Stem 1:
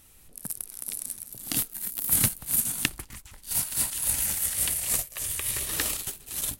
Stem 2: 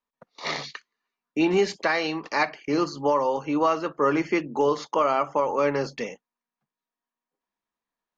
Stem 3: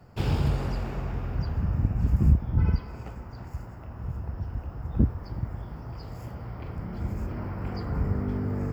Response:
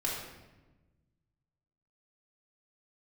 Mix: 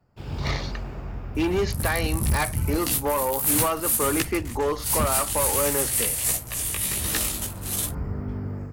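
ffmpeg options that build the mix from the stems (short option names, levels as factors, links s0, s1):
-filter_complex "[0:a]flanger=delay=15:depth=4.3:speed=1.4,adelay=1350,volume=0.668[s0];[1:a]asoftclip=type=hard:threshold=0.119,volume=0.282[s1];[2:a]volume=0.188,asplit=2[s2][s3];[s3]volume=0.178[s4];[3:a]atrim=start_sample=2205[s5];[s4][s5]afir=irnorm=-1:irlink=0[s6];[s0][s1][s2][s6]amix=inputs=4:normalize=0,volume=22.4,asoftclip=hard,volume=0.0447,dynaudnorm=f=130:g=5:m=3.16"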